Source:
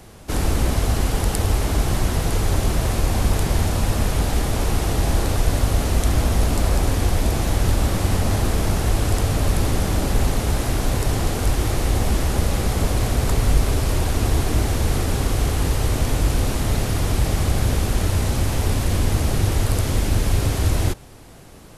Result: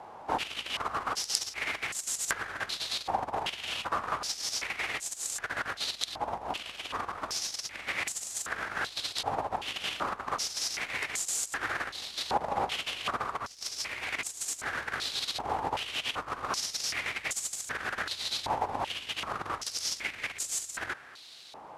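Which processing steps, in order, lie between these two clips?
negative-ratio compressor -21 dBFS, ratio -0.5; crackle 390/s -37 dBFS; stepped band-pass 2.6 Hz 870–7300 Hz; gain +7 dB

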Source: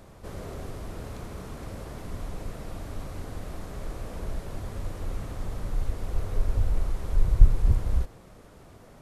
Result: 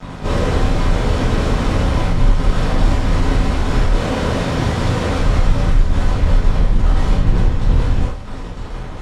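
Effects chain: 1.83–2.46 low shelf 170 Hz +5.5 dB; 3.94–5.18 HPF 120 Hz 12 dB/oct; in parallel at -1 dB: compressor, threshold -33 dBFS, peak gain reduction 24 dB; on the sum: fuzz box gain 40 dB, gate -40 dBFS; air absorption 97 m; diffused feedback echo 1.113 s, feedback 43%, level -15.5 dB; reverb, pre-delay 3 ms, DRR -9 dB; gain -10.5 dB

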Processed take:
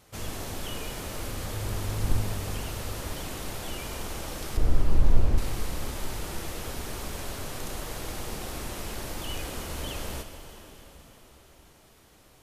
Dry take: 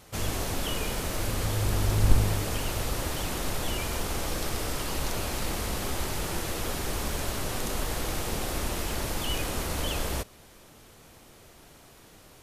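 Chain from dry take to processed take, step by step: 4.57–5.38 tilt -4 dB/oct; plate-style reverb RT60 4.9 s, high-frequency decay 0.9×, DRR 6.5 dB; gain -5.5 dB

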